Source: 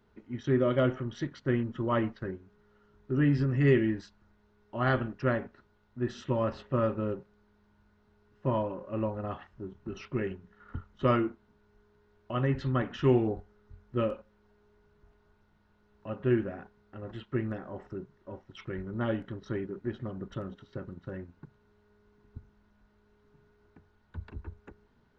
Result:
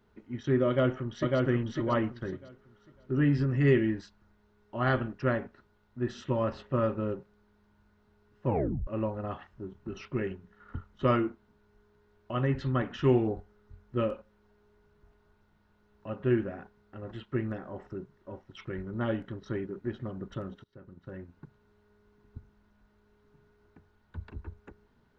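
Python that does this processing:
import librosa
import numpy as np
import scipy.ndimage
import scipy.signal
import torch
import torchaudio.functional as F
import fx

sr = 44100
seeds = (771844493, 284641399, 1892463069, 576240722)

y = fx.echo_throw(x, sr, start_s=0.67, length_s=0.71, ms=550, feedback_pct=25, wet_db=-1.5)
y = fx.edit(y, sr, fx.tape_stop(start_s=8.47, length_s=0.4),
    fx.fade_in_from(start_s=20.64, length_s=0.74, floor_db=-22.0), tone=tone)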